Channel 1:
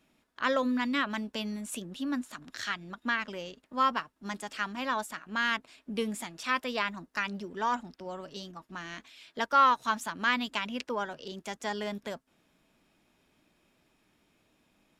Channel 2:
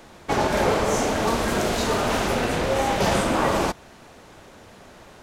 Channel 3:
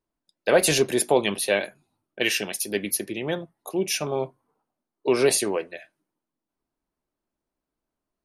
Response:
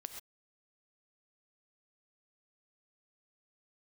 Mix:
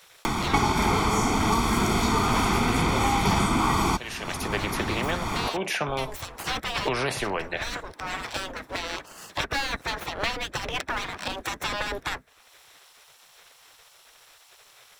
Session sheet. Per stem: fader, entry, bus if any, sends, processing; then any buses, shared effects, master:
-7.0 dB, 0.00 s, no send, comb filter that takes the minimum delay 0.52 ms; spectral gate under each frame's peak -15 dB weak
-1.5 dB, 0.25 s, no send, comb 0.9 ms, depth 91%
-12.5 dB, 1.80 s, no send, band-pass filter 1.1 kHz, Q 0.85; spectrum-flattening compressor 2:1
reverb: none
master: three bands compressed up and down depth 100%

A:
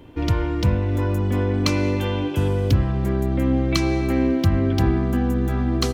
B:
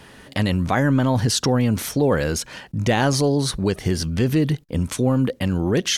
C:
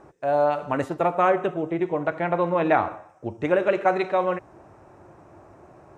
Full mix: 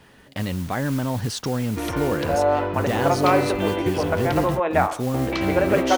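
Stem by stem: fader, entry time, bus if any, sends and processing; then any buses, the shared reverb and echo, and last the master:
+2.5 dB, 1.60 s, muted 4.60–5.14 s, no send, hard clipper -17.5 dBFS, distortion -12 dB; three-band isolator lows -14 dB, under 320 Hz, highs -17 dB, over 4.7 kHz
-6.0 dB, 0.00 s, no send, modulation noise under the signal 14 dB
+1.0 dB, 2.05 s, no send, high-pass 360 Hz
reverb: none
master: treble shelf 4.1 kHz -5 dB

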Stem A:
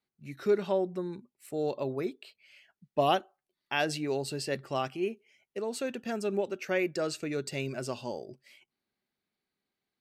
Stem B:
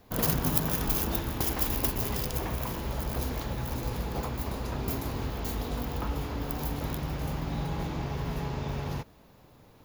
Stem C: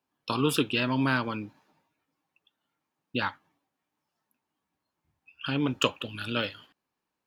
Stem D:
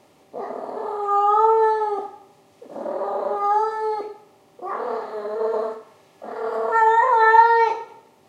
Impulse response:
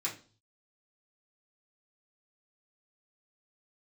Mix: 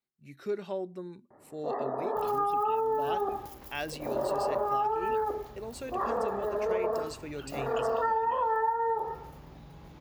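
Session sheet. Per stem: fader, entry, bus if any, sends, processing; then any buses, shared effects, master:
-6.5 dB, 0.00 s, send -23.5 dB, none
-14.5 dB, 2.05 s, no send, compression 4:1, threshold -31 dBFS, peak gain reduction 10 dB
-15.0 dB, 1.95 s, no send, spectral gate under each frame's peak -15 dB strong; bit crusher 9-bit
-2.0 dB, 1.30 s, no send, steep low-pass 1.9 kHz 96 dB/octave; low-pass that closes with the level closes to 1.1 kHz, closed at -15.5 dBFS; vibrato 0.35 Hz 15 cents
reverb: on, RT60 0.40 s, pre-delay 3 ms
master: compression 10:1, threshold -25 dBFS, peak gain reduction 14 dB

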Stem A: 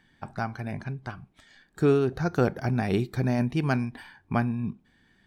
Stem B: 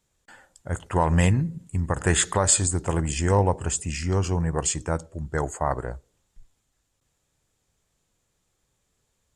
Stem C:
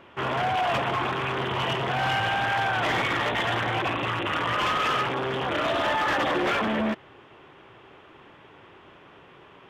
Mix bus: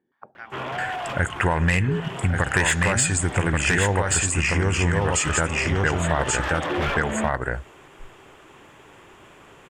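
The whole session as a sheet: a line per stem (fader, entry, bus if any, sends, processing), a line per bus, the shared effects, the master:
+3.0 dB, 0.00 s, no send, no echo send, step-sequenced band-pass 8.5 Hz 390–2500 Hz
+1.5 dB, 0.50 s, no send, echo send -4 dB, high-order bell 2 kHz +11.5 dB 1.2 oct; sine folder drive 5 dB, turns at -0.5 dBFS
+1.5 dB, 0.35 s, no send, no echo send, auto duck -7 dB, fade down 0.90 s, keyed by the first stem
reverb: none
echo: delay 1132 ms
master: compression 4:1, threshold -20 dBFS, peak gain reduction 14 dB

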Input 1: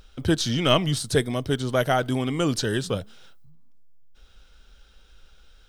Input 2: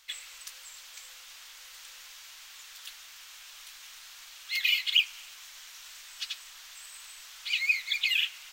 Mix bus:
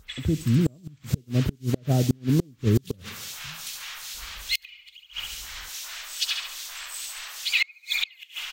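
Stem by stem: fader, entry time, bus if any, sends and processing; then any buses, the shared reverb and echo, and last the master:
-8.0 dB, 0.00 s, no send, echo send -21 dB, high-pass 54 Hz 12 dB/octave; low-pass that closes with the level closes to 320 Hz, closed at -22 dBFS; tilt EQ -2.5 dB/octave
+2.0 dB, 0.00 s, no send, echo send -5 dB, lamp-driven phase shifter 2.4 Hz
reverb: none
echo: feedback delay 68 ms, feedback 50%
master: level rider gain up to 11.5 dB; inverted gate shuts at -10 dBFS, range -33 dB

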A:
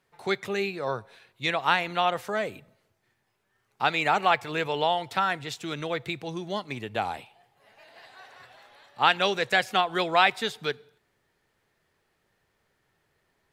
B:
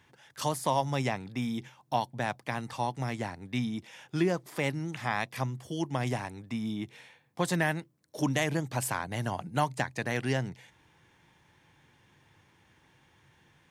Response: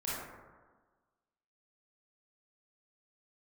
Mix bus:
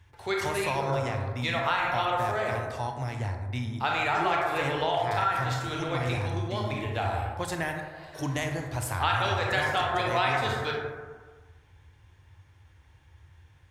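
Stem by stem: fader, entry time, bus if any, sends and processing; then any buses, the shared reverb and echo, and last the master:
+2.0 dB, 0.00 s, send -6.5 dB, gate with hold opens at -54 dBFS; auto duck -10 dB, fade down 0.30 s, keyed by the second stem
-4.5 dB, 0.00 s, send -5.5 dB, none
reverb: on, RT60 1.4 s, pre-delay 22 ms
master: resonant low shelf 120 Hz +13 dB, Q 3; compression 2.5:1, threshold -24 dBFS, peak gain reduction 6 dB

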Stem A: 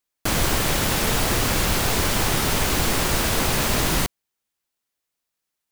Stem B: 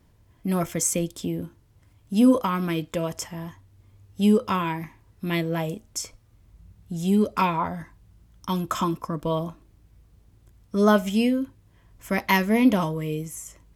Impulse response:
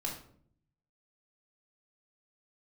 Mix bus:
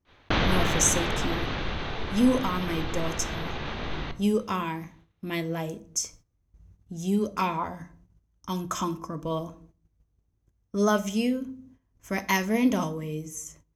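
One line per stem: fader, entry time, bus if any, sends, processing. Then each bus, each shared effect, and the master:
+0.5 dB, 0.05 s, send -22.5 dB, Chebyshev low-pass 3.8 kHz, order 4; level flattener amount 50%; auto duck -15 dB, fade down 2.00 s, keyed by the second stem
-6.0 dB, 0.00 s, send -10.5 dB, none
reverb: on, RT60 0.60 s, pre-delay 3 ms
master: gate -54 dBFS, range -13 dB; peaking EQ 6.2 kHz +12.5 dB 0.27 oct; tape noise reduction on one side only decoder only

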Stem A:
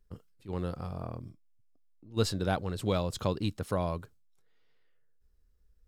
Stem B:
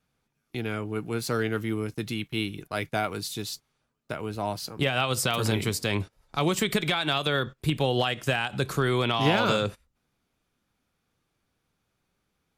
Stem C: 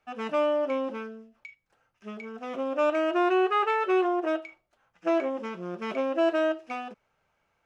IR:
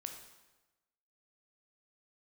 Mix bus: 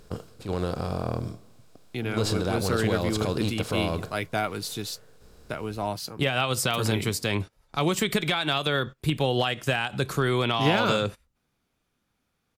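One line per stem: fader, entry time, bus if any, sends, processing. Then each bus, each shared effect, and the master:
+1.0 dB, 0.00 s, send -5 dB, spectral levelling over time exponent 0.6; peak limiter -20 dBFS, peak gain reduction 7.5 dB
+0.5 dB, 1.40 s, no send, none
mute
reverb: on, RT60 1.1 s, pre-delay 13 ms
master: none

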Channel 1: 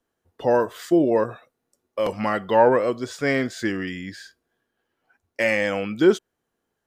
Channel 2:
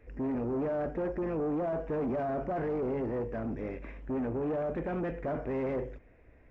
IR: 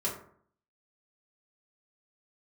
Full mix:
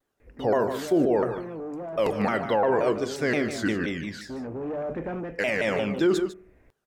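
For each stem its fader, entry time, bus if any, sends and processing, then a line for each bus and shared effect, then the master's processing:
-1.5 dB, 0.00 s, send -17 dB, echo send -12 dB, vibrato with a chosen wave saw down 5.7 Hz, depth 250 cents
+2.5 dB, 0.20 s, no send, no echo send, hum notches 50/100/150 Hz; auto duck -6 dB, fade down 0.30 s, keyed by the first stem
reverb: on, RT60 0.55 s, pre-delay 3 ms
echo: delay 151 ms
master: peak limiter -14 dBFS, peak gain reduction 9 dB

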